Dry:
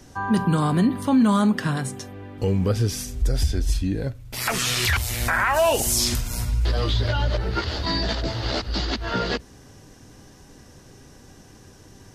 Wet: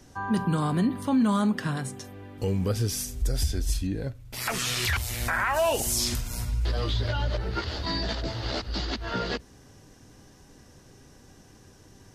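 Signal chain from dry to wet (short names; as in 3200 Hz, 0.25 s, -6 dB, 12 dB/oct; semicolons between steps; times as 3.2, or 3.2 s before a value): 2.04–3.87 high shelf 6200 Hz +9 dB; gain -5 dB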